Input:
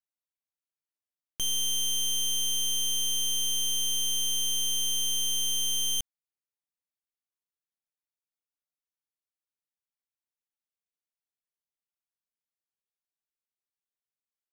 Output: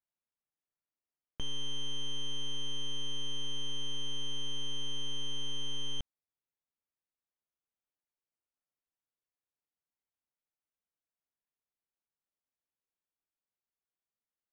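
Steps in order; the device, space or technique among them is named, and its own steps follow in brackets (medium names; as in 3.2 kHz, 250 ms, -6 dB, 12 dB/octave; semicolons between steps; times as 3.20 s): phone in a pocket (low-pass 3.1 kHz 12 dB/octave; treble shelf 2.1 kHz -10.5 dB); trim +1.5 dB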